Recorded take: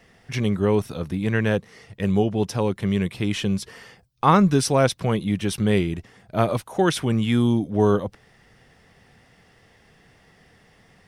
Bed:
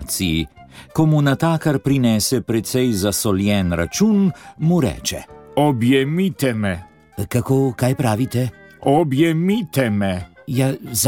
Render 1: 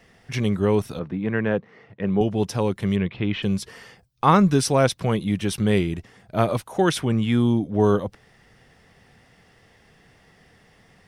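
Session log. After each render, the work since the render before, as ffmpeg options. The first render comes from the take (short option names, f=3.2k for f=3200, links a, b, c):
-filter_complex "[0:a]asettb=1/sr,asplit=3[a][b][c];[a]atrim=end=0.994[d];[b]atrim=start=0.99:end=2.21,asetpts=PTS-STARTPTS,afade=t=in:d=0.004:c=qsin,afade=t=out:st=1.216:d=0.004:c=qsin,highpass=140,lowpass=2k[e];[c]atrim=start=2.206[f];[d][e]acrossfade=d=0.004:c1=hsin:c2=qsin[g];[g][f]acrossfade=d=0.004:c1=qsin:c2=hsin,asplit=3[h][i][j];[h]afade=t=out:st=2.95:d=0.02[k];[i]lowpass=f=3.4k:w=0.5412,lowpass=f=3.4k:w=1.3066,afade=t=in:st=2.95:d=0.02,afade=t=out:st=3.42:d=0.02[l];[j]afade=t=in:st=3.42:d=0.02[m];[k][l][m]amix=inputs=3:normalize=0,asettb=1/sr,asplit=3[n][o][p];[n]atrim=end=7.014[q];[o]atrim=start=7.01:end=7.84,asetpts=PTS-STARTPTS,afade=t=in:d=0.004:c=qsin,afade=t=out:st=0.826:d=0.004:c=qsin,highshelf=f=4.6k:g=-7[r];[p]atrim=start=7.836[s];[q][r]acrossfade=d=0.004:c1=hsin:c2=qsin[t];[t][s]acrossfade=d=0.004:c1=qsin:c2=hsin"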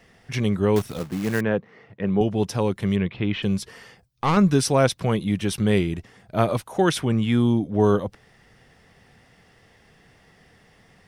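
-filter_complex "[0:a]asettb=1/sr,asplit=3[a][b][c];[a]atrim=end=0.764[d];[b]atrim=start=0.76:end=1.41,asetpts=PTS-STARTPTS,afade=t=in:d=0.004:c=qsin,afade=t=out:st=0.646:d=0.004:c=qsin,acrusher=bits=3:mode=log:mix=0:aa=0.000001[e];[c]atrim=start=1.406[f];[d][e]acrossfade=d=0.004:c1=hsin:c2=qsin[g];[g][f]acrossfade=d=0.004:c1=qsin:c2=hsin,asettb=1/sr,asplit=3[h][i][j];[h]atrim=end=3.624[k];[i]atrim=start=3.62:end=4.37,asetpts=PTS-STARTPTS,afade=t=in:d=0.004:c=qsin,afade=t=out:st=0.746:d=0.004:c=qsin,aeval=exprs='(tanh(6.31*val(0)+0.35)-tanh(0.35))/6.31':c=same[l];[j]atrim=start=4.366[m];[k][l]acrossfade=d=0.004:c1=hsin:c2=qsin[n];[n][m]acrossfade=d=0.004:c1=qsin:c2=hsin"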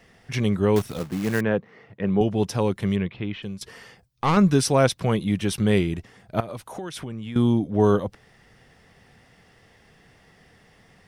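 -filter_complex "[0:a]asettb=1/sr,asplit=3[a][b][c];[a]atrim=end=6.404[d];[b]atrim=start=6.4:end=7.36,asetpts=PTS-STARTPTS,afade=t=in:d=0.004:c=qsin,afade=t=out:st=0.956:d=0.004:c=qsin,acompressor=threshold=-30dB:ratio=10:attack=3.2:release=140:knee=1:detection=peak[e];[c]atrim=start=7.356[f];[d][e]acrossfade=d=0.004:c1=hsin:c2=qsin[g];[g][f]acrossfade=d=0.004:c1=qsin:c2=hsin,asplit=2[h][i];[h]atrim=end=3.61,asetpts=PTS-STARTPTS,afade=t=out:st=2.8:d=0.81:silence=0.188365[j];[i]atrim=start=3.61,asetpts=PTS-STARTPTS,afade=t=in:d=0.004:c=hsin:silence=0.188365[k];[j][k]concat=n=2:v=0:a=1"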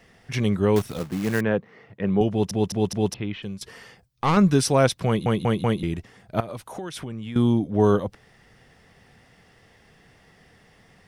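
-filter_complex "[0:a]asplit=9[a][b][c][d][e][f][g][h][i];[a]atrim=end=2.512[j];[b]atrim=start=2.298:end=2.512[k];[c]atrim=start=2.298:end=2.512[l];[d]atrim=start=2.298:end=2.512[m];[e]atrim=start=3.138:end=5.262[n];[f]atrim=start=5.068:end=5.262[o];[g]atrim=start=5.068:end=5.262[p];[h]atrim=start=5.068:end=5.262[q];[i]atrim=start=5.828[r];[j][k]acrossfade=d=0.004:c1=hsin:c2=hsin[s];[s][l]acrossfade=d=0.004:c1=hsin:c2=hsin[t];[t][m]acrossfade=d=0.004:c1=hsin:c2=hsin[u];[u][n]acrossfade=d=0.004:c1=hsin:c2=hsin[v];[v][o]acrossfade=d=0.004:c1=hsin:c2=hsin[w];[w][p]acrossfade=d=0.004:c1=hsin:c2=hsin[x];[x][q]acrossfade=d=0.004:c1=hsin:c2=hsin[y];[y][r]acrossfade=d=0.004:c1=hsin:c2=hsin"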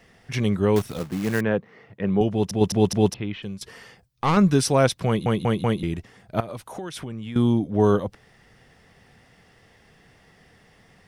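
-filter_complex "[0:a]asplit=3[a][b][c];[a]atrim=end=2.612[d];[b]atrim=start=2.608:end=3.102,asetpts=PTS-STARTPTS,volume=4dB[e];[c]atrim=start=3.098[f];[d][e]acrossfade=d=0.004:c1=hsin:c2=hsin[g];[g][f]acrossfade=d=0.004:c1=hsin:c2=hsin"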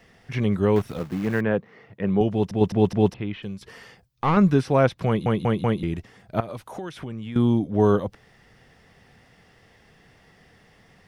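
-filter_complex "[0:a]acrossover=split=2800[a][b];[b]acompressor=threshold=-46dB:ratio=4:attack=1:release=60[c];[a][c]amix=inputs=2:normalize=0,equalizer=f=9.1k:t=o:w=0.77:g=-3"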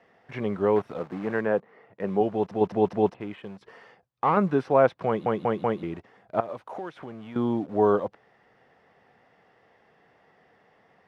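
-filter_complex "[0:a]asplit=2[a][b];[b]acrusher=bits=5:mix=0:aa=0.000001,volume=-12dB[c];[a][c]amix=inputs=2:normalize=0,bandpass=f=750:t=q:w=0.83:csg=0"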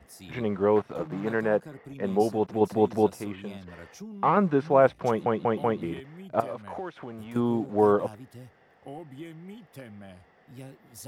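-filter_complex "[1:a]volume=-26.5dB[a];[0:a][a]amix=inputs=2:normalize=0"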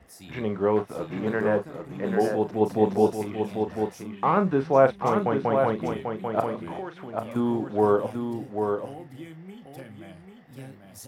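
-filter_complex "[0:a]asplit=2[a][b];[b]adelay=37,volume=-10dB[c];[a][c]amix=inputs=2:normalize=0,aecho=1:1:791:0.531"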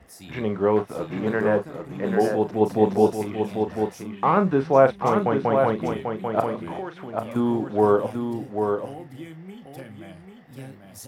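-af "volume=2.5dB,alimiter=limit=-3dB:level=0:latency=1"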